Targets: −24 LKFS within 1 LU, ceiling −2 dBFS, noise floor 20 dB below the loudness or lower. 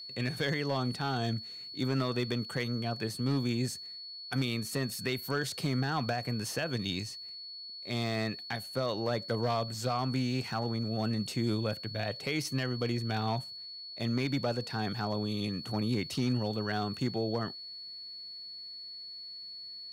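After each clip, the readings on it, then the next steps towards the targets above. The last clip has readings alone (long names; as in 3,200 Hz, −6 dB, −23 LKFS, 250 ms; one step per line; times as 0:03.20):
share of clipped samples 0.4%; peaks flattened at −22.5 dBFS; interfering tone 4,400 Hz; level of the tone −42 dBFS; integrated loudness −33.5 LKFS; sample peak −22.5 dBFS; target loudness −24.0 LKFS
→ clipped peaks rebuilt −22.5 dBFS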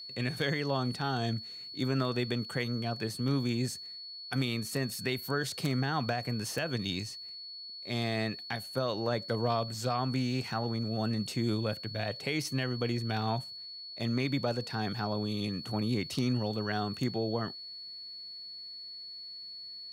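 share of clipped samples 0.0%; interfering tone 4,400 Hz; level of the tone −42 dBFS
→ notch filter 4,400 Hz, Q 30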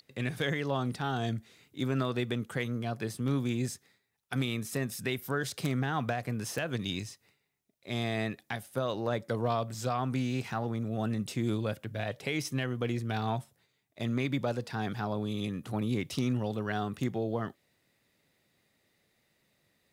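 interfering tone none found; integrated loudness −33.5 LKFS; sample peak −14.5 dBFS; target loudness −24.0 LKFS
→ level +9.5 dB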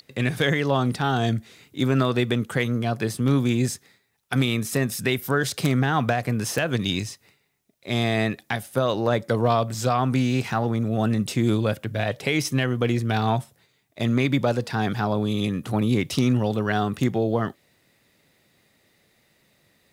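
integrated loudness −24.0 LKFS; sample peak −5.0 dBFS; background noise floor −66 dBFS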